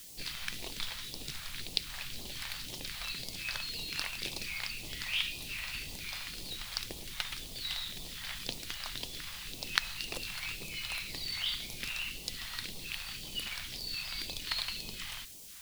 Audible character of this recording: a quantiser's noise floor 8-bit, dither triangular; phasing stages 2, 1.9 Hz, lowest notch 320–1500 Hz

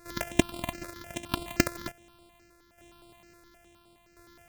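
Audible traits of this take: a buzz of ramps at a fixed pitch in blocks of 128 samples; tremolo saw down 0.72 Hz, depth 60%; notches that jump at a steady rate 9.6 Hz 830–6200 Hz

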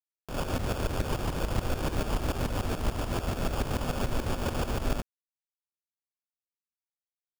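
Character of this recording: a quantiser's noise floor 6-bit, dither none; tremolo saw up 6.9 Hz, depth 75%; aliases and images of a low sample rate 2000 Hz, jitter 0%

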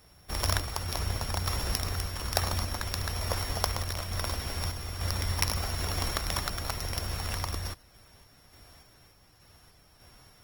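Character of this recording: a buzz of ramps at a fixed pitch in blocks of 8 samples; random-step tremolo 3.4 Hz; Opus

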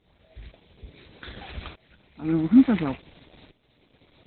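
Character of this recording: tremolo saw up 0.57 Hz, depth 90%; Opus

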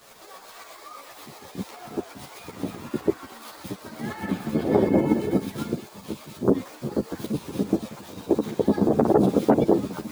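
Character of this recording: a quantiser's noise floor 8-bit, dither none; tremolo saw up 8 Hz, depth 50%; a shimmering, thickened sound

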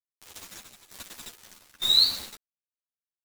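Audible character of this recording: a quantiser's noise floor 6-bit, dither none; tremolo saw down 1.1 Hz, depth 90%; a shimmering, thickened sound

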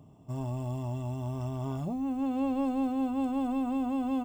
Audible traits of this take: noise floor -55 dBFS; spectral tilt -5.0 dB/oct

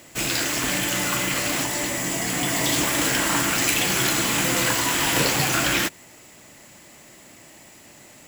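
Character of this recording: noise floor -48 dBFS; spectral tilt -2.5 dB/oct

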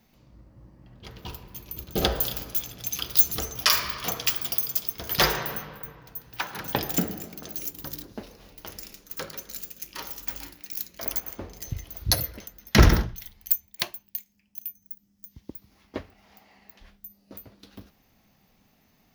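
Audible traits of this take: noise floor -65 dBFS; spectral tilt -3.0 dB/oct

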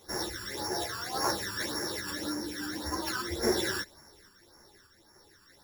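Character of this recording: a buzz of ramps at a fixed pitch in blocks of 8 samples; phasing stages 12, 1.8 Hz, lowest notch 650–3500 Hz; random-step tremolo; a shimmering, thickened sound

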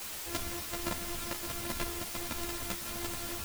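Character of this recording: a buzz of ramps at a fixed pitch in blocks of 128 samples; chopped level 1.4 Hz, depth 65%, duty 85%; a quantiser's noise floor 6-bit, dither triangular; a shimmering, thickened sound

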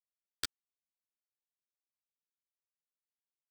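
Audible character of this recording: aliases and images of a low sample rate 13000 Hz, jitter 0%; tremolo saw down 11 Hz, depth 40%; a quantiser's noise floor 6-bit, dither none; a shimmering, thickened sound

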